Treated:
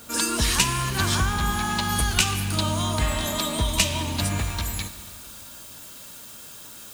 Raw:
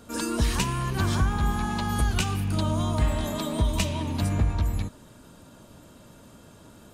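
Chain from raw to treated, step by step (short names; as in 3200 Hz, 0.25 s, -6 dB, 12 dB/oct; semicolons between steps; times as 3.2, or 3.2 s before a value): Schroeder reverb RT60 2.4 s, combs from 31 ms, DRR 11.5 dB; added noise blue -59 dBFS; tilt shelf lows -6 dB, about 1200 Hz, from 4.37 s lows -10 dB; gain +4.5 dB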